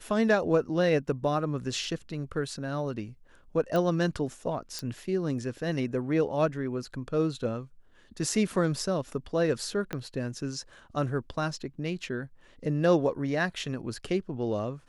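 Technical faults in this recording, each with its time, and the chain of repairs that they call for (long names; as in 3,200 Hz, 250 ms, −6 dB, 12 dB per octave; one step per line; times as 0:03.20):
0:03.76: click −17 dBFS
0:04.79: click −20 dBFS
0:09.93: click −18 dBFS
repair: click removal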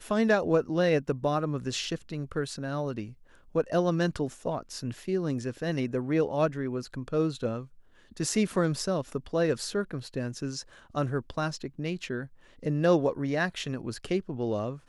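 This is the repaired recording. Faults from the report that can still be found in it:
0:09.93: click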